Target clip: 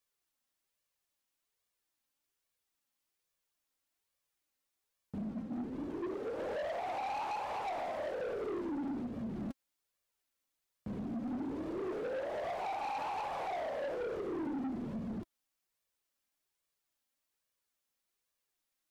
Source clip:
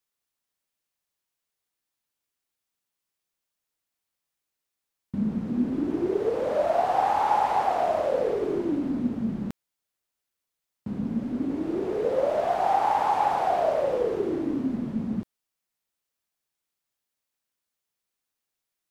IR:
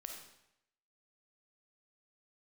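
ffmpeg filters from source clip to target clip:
-filter_complex "[0:a]asplit=3[a][b][c];[a]afade=t=out:st=5.24:d=0.02[d];[b]agate=range=-33dB:threshold=-23dB:ratio=3:detection=peak,afade=t=in:st=5.24:d=0.02,afade=t=out:st=6.38:d=0.02[e];[c]afade=t=in:st=6.38:d=0.02[f];[d][e][f]amix=inputs=3:normalize=0,acompressor=threshold=-29dB:ratio=4,flanger=delay=1.7:depth=2.1:regen=41:speed=1.2:shape=sinusoidal,asoftclip=type=tanh:threshold=-37.5dB,volume=3dB"

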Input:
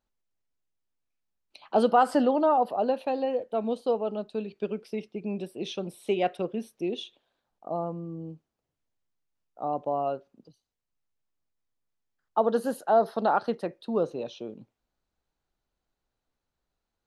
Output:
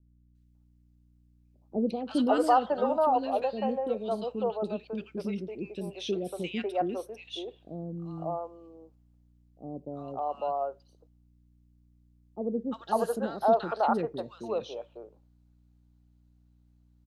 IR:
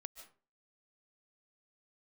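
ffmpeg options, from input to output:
-filter_complex "[0:a]aeval=exprs='val(0)+0.000891*(sin(2*PI*60*n/s)+sin(2*PI*2*60*n/s)/2+sin(2*PI*3*60*n/s)/3+sin(2*PI*4*60*n/s)/4+sin(2*PI*5*60*n/s)/5)':c=same,acrossover=split=430|1500[a][b][c];[c]adelay=350[d];[b]adelay=550[e];[a][e][d]amix=inputs=3:normalize=0"

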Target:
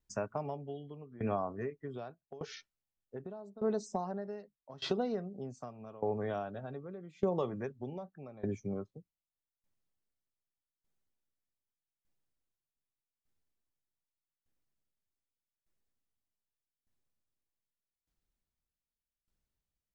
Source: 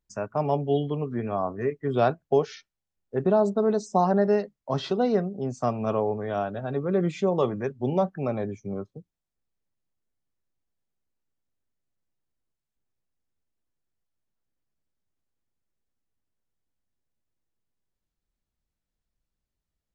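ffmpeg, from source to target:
-af "acompressor=threshold=-28dB:ratio=5,aeval=exprs='val(0)*pow(10,-21*if(lt(mod(0.83*n/s,1),2*abs(0.83)/1000),1-mod(0.83*n/s,1)/(2*abs(0.83)/1000),(mod(0.83*n/s,1)-2*abs(0.83)/1000)/(1-2*abs(0.83)/1000))/20)':c=same,volume=1dB"

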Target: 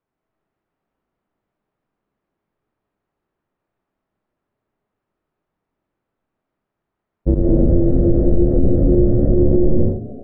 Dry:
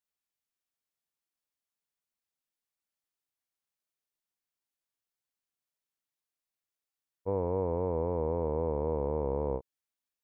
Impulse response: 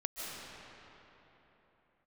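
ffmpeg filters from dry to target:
-filter_complex "[0:a]asettb=1/sr,asplit=3[a][b][c];[a]atrim=end=7.344[d];[b]atrim=start=7.34:end=9.37,asetpts=PTS-STARTPTS,afade=t=in:d=0.004:c=qsin,afade=t=out:st=2.026:d=0.004:c=qsin,agate=range=-33dB:threshold=-25dB:ratio=3:detection=peak[e];[c]atrim=start=9.366[f];[d][e]acrossfade=d=0.004:c1=hsin:c2=qsin[g];[g][f]acrossfade=d=0.004:c1=qsin:c2=hsin,lowpass=1.4k,aemphasis=mode=reproduction:type=50fm,afreqshift=-430,asplit=6[h][i][j][k][l][m];[i]adelay=166,afreqshift=-150,volume=-18dB[n];[j]adelay=332,afreqshift=-300,volume=-23dB[o];[k]adelay=498,afreqshift=-450,volume=-28.1dB[p];[l]adelay=664,afreqshift=-600,volume=-33.1dB[q];[m]adelay=830,afreqshift=-750,volume=-38.1dB[r];[h][n][o][p][q][r]amix=inputs=6:normalize=0[s];[1:a]atrim=start_sample=2205,afade=t=out:st=0.44:d=0.01,atrim=end_sample=19845[t];[s][t]afir=irnorm=-1:irlink=0,alimiter=level_in=25.5dB:limit=-1dB:release=50:level=0:latency=1,volume=-3.5dB"

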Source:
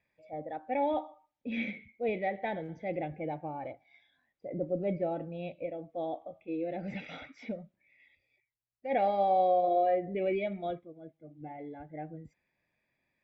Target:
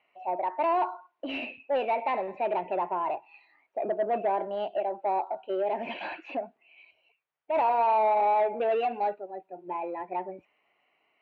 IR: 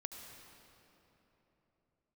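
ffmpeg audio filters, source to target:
-filter_complex "[0:a]asplit=2[a][b];[b]acompressor=threshold=-35dB:ratio=6,volume=-2dB[c];[a][c]amix=inputs=2:normalize=0,asplit=2[d][e];[e]highpass=f=720:p=1,volume=18dB,asoftclip=type=tanh:threshold=-16dB[f];[d][f]amix=inputs=2:normalize=0,lowpass=f=1k:p=1,volume=-6dB,asetrate=52038,aresample=44100,acrossover=split=330 3500:gain=0.224 1 0.0708[g][h][i];[g][h][i]amix=inputs=3:normalize=0"

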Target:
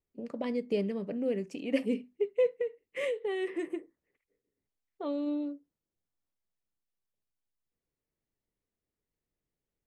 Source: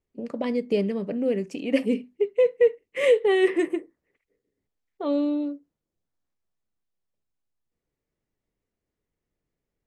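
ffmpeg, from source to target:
-filter_complex "[0:a]asplit=3[a][b][c];[a]afade=t=out:st=2.54:d=0.02[d];[b]acompressor=threshold=-23dB:ratio=10,afade=t=in:st=2.54:d=0.02,afade=t=out:st=5.26:d=0.02[e];[c]afade=t=in:st=5.26:d=0.02[f];[d][e][f]amix=inputs=3:normalize=0,volume=-6.5dB"

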